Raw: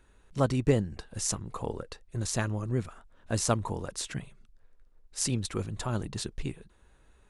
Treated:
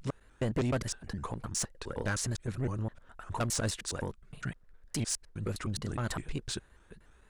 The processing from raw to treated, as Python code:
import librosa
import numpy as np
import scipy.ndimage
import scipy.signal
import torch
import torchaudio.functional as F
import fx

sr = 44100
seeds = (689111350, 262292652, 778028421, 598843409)

y = fx.block_reorder(x, sr, ms=103.0, group=4)
y = fx.peak_eq(y, sr, hz=1600.0, db=5.0, octaves=0.62)
y = 10.0 ** (-25.0 / 20.0) * np.tanh(y / 10.0 ** (-25.0 / 20.0))
y = fx.vibrato_shape(y, sr, shape='saw_up', rate_hz=3.4, depth_cents=160.0)